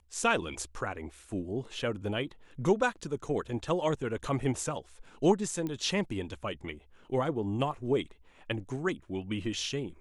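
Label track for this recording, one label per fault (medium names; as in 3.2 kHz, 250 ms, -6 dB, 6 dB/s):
5.670000	5.670000	pop -23 dBFS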